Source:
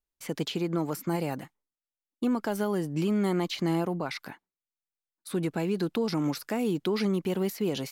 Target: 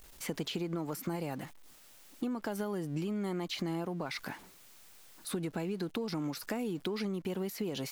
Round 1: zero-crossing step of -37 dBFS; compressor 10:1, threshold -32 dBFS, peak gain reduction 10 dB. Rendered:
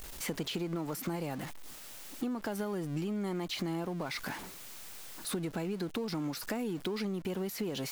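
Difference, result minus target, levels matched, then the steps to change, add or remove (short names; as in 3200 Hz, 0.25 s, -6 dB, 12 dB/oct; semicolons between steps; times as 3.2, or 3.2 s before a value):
zero-crossing step: distortion +9 dB
change: zero-crossing step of -47 dBFS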